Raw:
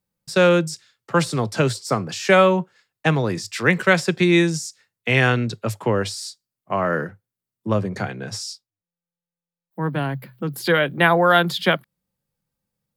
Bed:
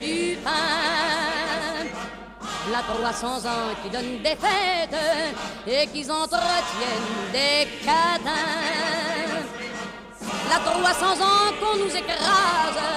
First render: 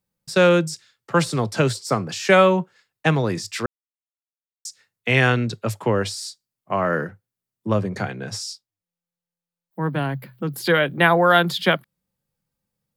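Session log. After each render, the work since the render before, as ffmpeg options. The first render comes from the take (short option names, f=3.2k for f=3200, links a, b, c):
-filter_complex "[0:a]asplit=3[a][b][c];[a]atrim=end=3.66,asetpts=PTS-STARTPTS,afade=t=out:st=3.656:d=0.004:c=hsin[d];[b]atrim=start=3.66:end=4.65,asetpts=PTS-STARTPTS,volume=0[e];[c]atrim=start=4.65,asetpts=PTS-STARTPTS,afade=t=in:d=0.004:c=hsin[f];[d][e][f]concat=n=3:v=0:a=1"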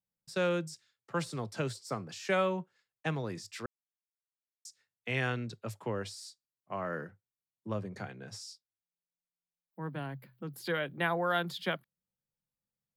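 -af "volume=-15dB"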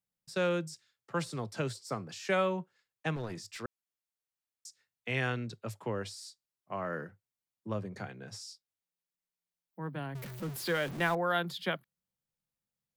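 -filter_complex "[0:a]asettb=1/sr,asplit=3[a][b][c];[a]atrim=end=3.164[d];[b]atrim=start=3.16:end=3.6,asetpts=PTS-STARTPTS,afade=t=in:d=0.004:c=qsin,afade=t=out:st=0.436:d=0.004:c=qsin,aeval=exprs='clip(val(0),-1,0.0112)':c=same[e];[c]atrim=start=3.596[f];[d][e]acrossfade=d=0.004:c1=hsin:c2=qsin[g];[g][f]acrossfade=d=0.004:c1=qsin:c2=hsin,asettb=1/sr,asplit=3[h][i][j];[h]atrim=end=10.154[k];[i]atrim=start=10.15:end=11.15,asetpts=PTS-STARTPTS,afade=t=in:d=0.004:c=qsin,afade=t=out:st=0.996:d=0.004:c=qsin,aeval=exprs='val(0)+0.5*0.0119*sgn(val(0))':c=same[l];[j]atrim=start=11.146[m];[k][l]acrossfade=d=0.004:c1=hsin:c2=qsin[n];[n][m]acrossfade=d=0.004:c1=qsin:c2=hsin"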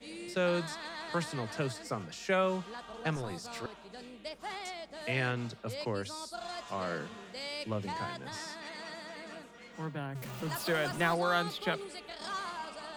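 -filter_complex "[1:a]volume=-19.5dB[a];[0:a][a]amix=inputs=2:normalize=0"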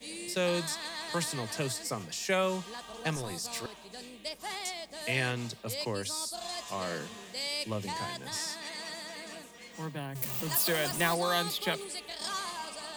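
-af "aemphasis=mode=production:type=75kf,bandreject=f=1.4k:w=6.9"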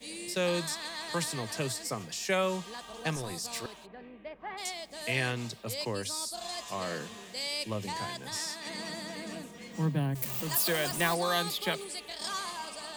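-filter_complex "[0:a]asplit=3[a][b][c];[a]afade=t=out:st=3.85:d=0.02[d];[b]lowpass=f=2.1k:w=0.5412,lowpass=f=2.1k:w=1.3066,afade=t=in:st=3.85:d=0.02,afade=t=out:st=4.57:d=0.02[e];[c]afade=t=in:st=4.57:d=0.02[f];[d][e][f]amix=inputs=3:normalize=0,asettb=1/sr,asplit=3[g][h][i];[g]atrim=end=8.664[j];[h]atrim=start=8.66:end=10.15,asetpts=PTS-STARTPTS,afade=t=in:d=0.004:c=qsin,afade=t=out:st=1.486:d=0.004:c=qsin,equalizer=f=160:t=o:w=2.7:g=11.5[k];[i]atrim=start=10.146[l];[j][k]acrossfade=d=0.004:c1=hsin:c2=qsin[m];[m][l]acrossfade=d=0.004:c1=qsin:c2=hsin"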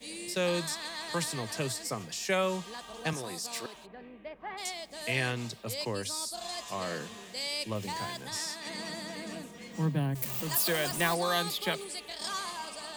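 -filter_complex "[0:a]asettb=1/sr,asplit=3[a][b][c];[a]atrim=end=3.134[d];[b]atrim=start=3.13:end=3.75,asetpts=PTS-STARTPTS,afade=t=in:d=0.004:c=qsin,afade=t=out:st=0.616:d=0.004:c=qsin,highpass=180[e];[c]atrim=start=3.746[f];[d][e]acrossfade=d=0.004:c1=hsin:c2=qsin[g];[g][f]acrossfade=d=0.004:c1=qsin:c2=hsin,asettb=1/sr,asplit=3[h][i][j];[h]atrim=end=7.754[k];[i]atrim=start=7.75:end=8.23,asetpts=PTS-STARTPTS,afade=t=in:d=0.004:c=qsin,afade=t=out:st=0.476:d=0.004:c=qsin,acrusher=bits=7:mix=0:aa=0.5[l];[j]atrim=start=8.226[m];[k][l]acrossfade=d=0.004:c1=hsin:c2=qsin[n];[n][m]acrossfade=d=0.004:c1=qsin:c2=hsin"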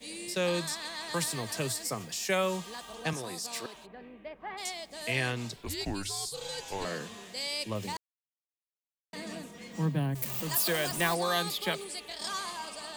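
-filter_complex "[0:a]asettb=1/sr,asplit=3[a][b][c];[a]atrim=end=1.144[d];[b]atrim=start=1.14:end=2.95,asetpts=PTS-STARTPTS,afade=t=in:d=0.004:c=qsin,afade=t=out:st=1.806:d=0.004:c=qsin,highshelf=f=11k:g=9[e];[c]atrim=start=2.946[f];[d][e]acrossfade=d=0.004:c1=hsin:c2=qsin[g];[g][f]acrossfade=d=0.004:c1=qsin:c2=hsin,asettb=1/sr,asplit=3[h][i][j];[h]atrim=end=5.564[k];[i]atrim=start=5.56:end=6.85,asetpts=PTS-STARTPTS,afade=t=in:d=0.004:c=qsin,afade=t=out:st=1.286:d=0.004:c=qsin,afreqshift=-200[l];[j]atrim=start=6.846[m];[k][l]acrossfade=d=0.004:c1=hsin:c2=qsin[n];[n][m]acrossfade=d=0.004:c1=qsin:c2=hsin,asplit=3[o][p][q];[o]atrim=end=7.97,asetpts=PTS-STARTPTS,afade=t=out:st=7.966:d=0.004:c=hsin[r];[p]atrim=start=7.97:end=9.13,asetpts=PTS-STARTPTS,volume=0[s];[q]atrim=start=9.13,asetpts=PTS-STARTPTS,afade=t=in:d=0.004:c=hsin[t];[r][s][t]concat=n=3:v=0:a=1"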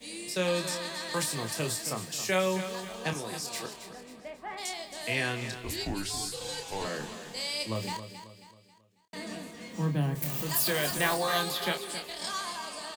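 -filter_complex "[0:a]asplit=2[a][b];[b]adelay=27,volume=-7dB[c];[a][c]amix=inputs=2:normalize=0,asplit=2[d][e];[e]aecho=0:1:271|542|813|1084:0.282|0.118|0.0497|0.0209[f];[d][f]amix=inputs=2:normalize=0"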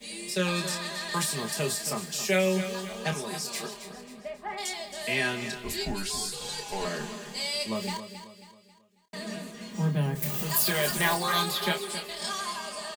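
-af "aecho=1:1:4.9:0.86"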